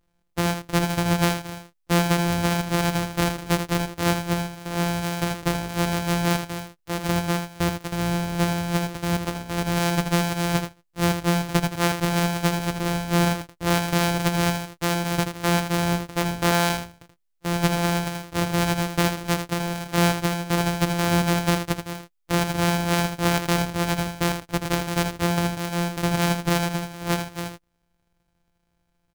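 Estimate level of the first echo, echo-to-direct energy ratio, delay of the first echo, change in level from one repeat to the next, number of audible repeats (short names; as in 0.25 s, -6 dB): -8.0 dB, -8.0 dB, 80 ms, no steady repeat, 1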